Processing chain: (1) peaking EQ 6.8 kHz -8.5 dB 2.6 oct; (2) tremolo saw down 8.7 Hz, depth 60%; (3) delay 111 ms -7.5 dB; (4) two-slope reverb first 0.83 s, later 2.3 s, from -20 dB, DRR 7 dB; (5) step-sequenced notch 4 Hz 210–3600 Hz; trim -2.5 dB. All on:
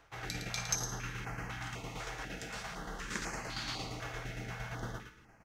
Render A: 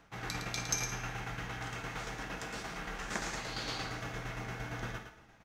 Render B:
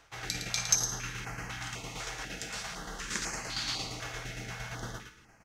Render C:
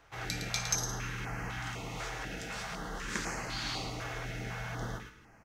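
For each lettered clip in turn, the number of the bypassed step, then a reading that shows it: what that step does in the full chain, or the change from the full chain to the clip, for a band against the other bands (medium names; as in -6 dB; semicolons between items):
5, momentary loudness spread change -1 LU; 1, 8 kHz band +7.5 dB; 2, loudness change +3.0 LU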